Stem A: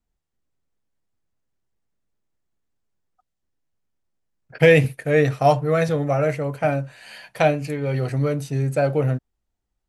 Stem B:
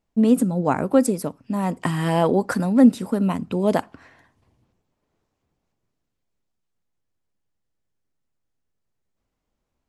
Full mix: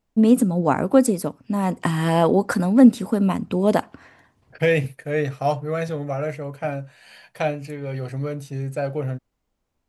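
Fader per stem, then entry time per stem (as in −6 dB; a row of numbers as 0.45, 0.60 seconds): −5.5, +1.5 decibels; 0.00, 0.00 seconds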